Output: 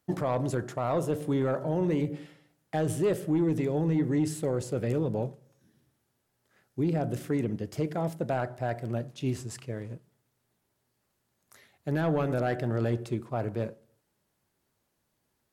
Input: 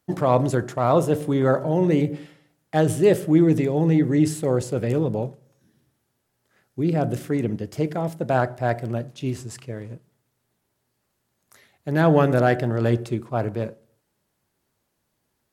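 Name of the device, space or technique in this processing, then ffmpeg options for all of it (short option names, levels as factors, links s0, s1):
soft clipper into limiter: -af "asoftclip=type=tanh:threshold=0.335,alimiter=limit=0.15:level=0:latency=1:release=344,volume=0.708"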